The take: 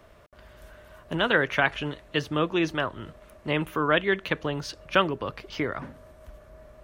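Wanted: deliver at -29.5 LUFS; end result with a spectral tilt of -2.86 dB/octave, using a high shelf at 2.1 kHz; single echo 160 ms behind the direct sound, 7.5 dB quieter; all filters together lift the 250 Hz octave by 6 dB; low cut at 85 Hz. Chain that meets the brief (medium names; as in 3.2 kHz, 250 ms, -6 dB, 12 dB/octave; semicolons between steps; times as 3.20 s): high-pass 85 Hz; peaking EQ 250 Hz +8.5 dB; treble shelf 2.1 kHz +8 dB; delay 160 ms -7.5 dB; trim -7 dB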